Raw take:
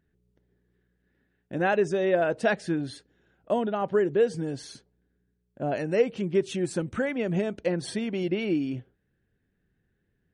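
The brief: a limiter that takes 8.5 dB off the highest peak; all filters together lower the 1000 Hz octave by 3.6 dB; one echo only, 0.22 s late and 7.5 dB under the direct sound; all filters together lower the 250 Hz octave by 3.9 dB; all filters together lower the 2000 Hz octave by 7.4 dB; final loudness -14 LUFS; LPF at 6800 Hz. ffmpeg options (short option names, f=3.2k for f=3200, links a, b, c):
-af "lowpass=6.8k,equalizer=f=250:t=o:g=-5.5,equalizer=f=1k:t=o:g=-3.5,equalizer=f=2k:t=o:g=-8.5,alimiter=limit=-22dB:level=0:latency=1,aecho=1:1:220:0.422,volume=18dB"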